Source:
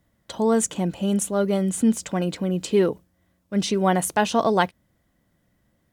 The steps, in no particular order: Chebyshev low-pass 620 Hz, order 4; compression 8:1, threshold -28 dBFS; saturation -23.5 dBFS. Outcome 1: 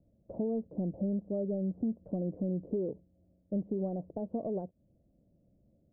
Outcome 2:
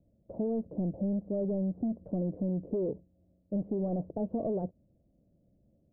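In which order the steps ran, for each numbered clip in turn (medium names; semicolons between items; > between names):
compression > saturation > Chebyshev low-pass; saturation > Chebyshev low-pass > compression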